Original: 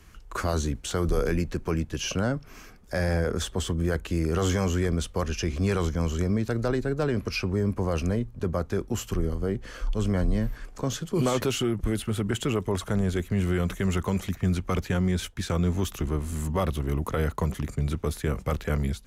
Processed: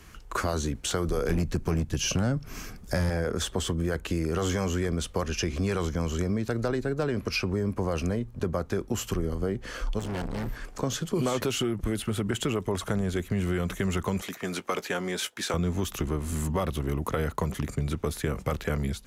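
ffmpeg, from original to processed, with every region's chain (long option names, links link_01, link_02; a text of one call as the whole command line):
ffmpeg -i in.wav -filter_complex "[0:a]asettb=1/sr,asplit=3[link_01][link_02][link_03];[link_01]atrim=end=1.294[link_04];[link_02]atrim=start=1.29:end=3.1,asetpts=PTS-STARTPTS,afade=type=in:duration=0.004:curve=qsin,afade=type=out:start_time=1.806:duration=0.004:curve=qsin,bass=frequency=250:gain=9,treble=frequency=4000:gain=5,asoftclip=type=hard:threshold=-15dB[link_05];[link_03]atrim=start=3.096[link_06];[link_04][link_05]acrossfade=duration=0.004:curve1=hsin:curve2=qsin[link_07];[link_07][link_06]acrossfade=duration=0.004:curve1=qsin:curve2=hsin,asettb=1/sr,asplit=3[link_08][link_09][link_10];[link_08]atrim=end=9.994[link_11];[link_09]atrim=start=9.99:end=10.49,asetpts=PTS-STARTPTS,afade=type=in:duration=0.004:curve=qsin,afade=type=out:start_time=0.496:duration=0.004:curve=qsin,asplit=2[link_12][link_13];[link_13]adelay=18,volume=-10dB[link_14];[link_12][link_14]amix=inputs=2:normalize=0,atrim=end_sample=22050,volume=32.5dB,asoftclip=hard,volume=-32.5dB[link_15];[link_10]atrim=start=10.486[link_16];[link_11][link_15]acrossfade=duration=0.004:curve1=hsin:curve2=qsin[link_17];[link_17][link_16]acrossfade=duration=0.004:curve1=qsin:curve2=hsin,asettb=1/sr,asplit=3[link_18][link_19][link_20];[link_18]atrim=end=14.224[link_21];[link_19]atrim=start=14.22:end=15.54,asetpts=PTS-STARTPTS,afade=type=in:duration=0.004:curve=qsin,afade=type=out:start_time=1.316:duration=0.004:curve=qsin,highpass=370,asplit=2[link_22][link_23];[link_23]adelay=18,volume=-14dB[link_24];[link_22][link_24]amix=inputs=2:normalize=0,atrim=end_sample=58212[link_25];[link_20]atrim=start=15.536[link_26];[link_21][link_25]acrossfade=duration=0.004:curve1=hsin:curve2=qsin[link_27];[link_27][link_26]acrossfade=duration=0.004:curve1=qsin:curve2=hsin,lowshelf=frequency=97:gain=-5.5,acompressor=threshold=-30dB:ratio=3,volume=4.5dB" out.wav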